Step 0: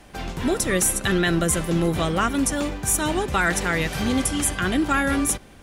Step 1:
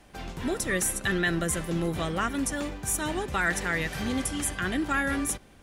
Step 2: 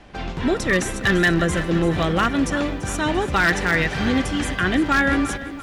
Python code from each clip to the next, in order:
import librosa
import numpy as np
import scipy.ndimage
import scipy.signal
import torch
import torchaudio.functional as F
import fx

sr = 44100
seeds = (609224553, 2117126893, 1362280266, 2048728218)

y1 = fx.dynamic_eq(x, sr, hz=1800.0, q=4.5, threshold_db=-41.0, ratio=4.0, max_db=6)
y1 = y1 * librosa.db_to_amplitude(-7.0)
y2 = scipy.signal.sosfilt(scipy.signal.butter(2, 4500.0, 'lowpass', fs=sr, output='sos'), y1)
y2 = 10.0 ** (-19.5 / 20.0) * (np.abs((y2 / 10.0 ** (-19.5 / 20.0) + 3.0) % 4.0 - 2.0) - 1.0)
y2 = fx.echo_crushed(y2, sr, ms=340, feedback_pct=55, bits=10, wet_db=-14)
y2 = y2 * librosa.db_to_amplitude(9.0)